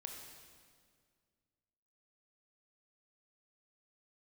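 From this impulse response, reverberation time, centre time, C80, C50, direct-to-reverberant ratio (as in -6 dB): 2.0 s, 64 ms, 4.5 dB, 3.0 dB, 1.5 dB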